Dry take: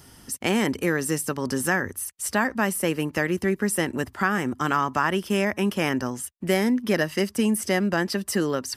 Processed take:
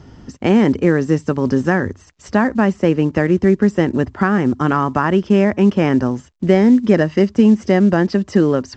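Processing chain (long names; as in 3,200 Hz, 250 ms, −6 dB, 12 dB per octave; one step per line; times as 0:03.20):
low-pass filter 3,000 Hz 6 dB per octave
tilt shelving filter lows +5.5 dB, about 780 Hz
level +7 dB
A-law companding 128 kbit/s 16,000 Hz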